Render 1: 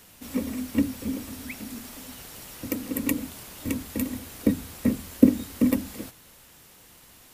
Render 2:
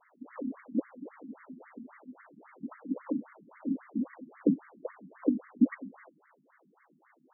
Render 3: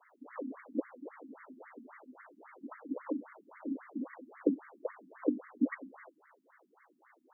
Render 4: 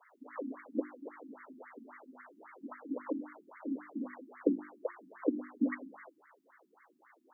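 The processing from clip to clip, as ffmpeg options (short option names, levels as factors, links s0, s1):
-af "afftfilt=real='re*between(b*sr/1024,210*pow(1600/210,0.5+0.5*sin(2*PI*3.7*pts/sr))/1.41,210*pow(1600/210,0.5+0.5*sin(2*PI*3.7*pts/sr))*1.41)':imag='im*between(b*sr/1024,210*pow(1600/210,0.5+0.5*sin(2*PI*3.7*pts/sr))/1.41,210*pow(1600/210,0.5+0.5*sin(2*PI*3.7*pts/sr))*1.41)':win_size=1024:overlap=0.75"
-af "highpass=f=310:w=0.5412,highpass=f=310:w=1.3066,volume=1.12"
-af "bandreject=f=50:t=h:w=6,bandreject=f=100:t=h:w=6,bandreject=f=150:t=h:w=6,bandreject=f=200:t=h:w=6,bandreject=f=250:t=h:w=6,bandreject=f=300:t=h:w=6,bandreject=f=350:t=h:w=6,volume=1.12"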